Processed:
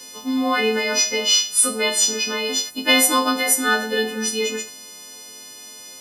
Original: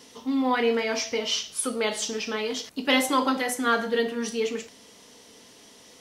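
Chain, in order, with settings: partials quantised in pitch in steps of 3 st; trim +3 dB

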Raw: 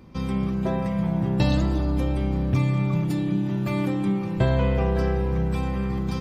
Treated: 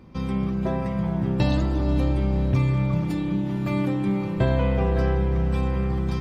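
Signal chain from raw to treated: treble shelf 5.3 kHz -6 dB; echo that smears into a reverb 473 ms, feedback 47%, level -11 dB

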